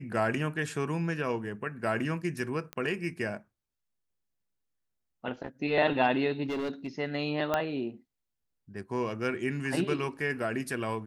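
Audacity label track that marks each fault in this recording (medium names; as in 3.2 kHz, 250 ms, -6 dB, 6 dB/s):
2.730000	2.730000	pop -22 dBFS
6.440000	6.880000	clipped -29 dBFS
7.540000	7.540000	pop -14 dBFS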